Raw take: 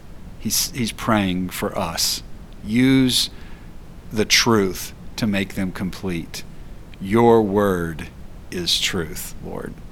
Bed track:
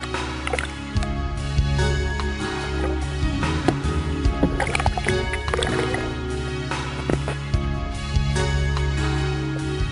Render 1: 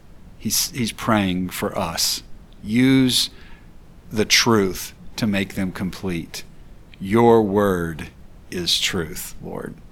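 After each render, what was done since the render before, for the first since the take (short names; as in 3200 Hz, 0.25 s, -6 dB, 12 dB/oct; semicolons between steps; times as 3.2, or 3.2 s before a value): noise print and reduce 6 dB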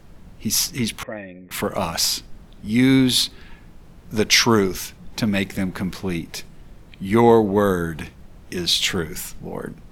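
1.03–1.51 vocal tract filter e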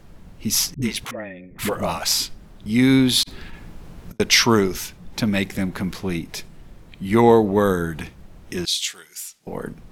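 0.74–2.66 dispersion highs, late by 79 ms, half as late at 320 Hz; 3.23–4.2 negative-ratio compressor -37 dBFS, ratio -0.5; 8.65–9.47 band-pass 7700 Hz, Q 0.77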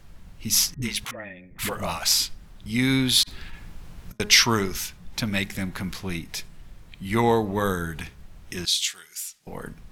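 bell 360 Hz -8.5 dB 2.7 oct; de-hum 208.4 Hz, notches 9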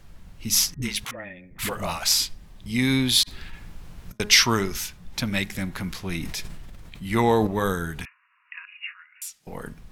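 2.24–3.31 notch 1400 Hz, Q 7.5; 6.09–7.47 sustainer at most 25 dB/s; 8.05–9.22 brick-wall FIR band-pass 940–2900 Hz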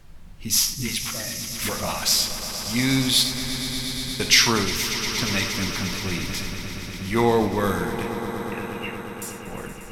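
swelling echo 0.118 s, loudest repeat 5, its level -14 dB; non-linear reverb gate 0.12 s flat, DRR 7.5 dB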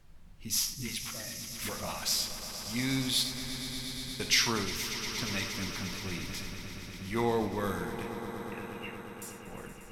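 gain -10 dB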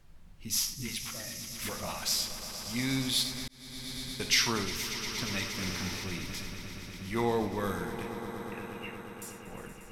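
3.48–3.96 fade in; 5.54–6.04 flutter echo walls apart 7.4 m, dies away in 0.59 s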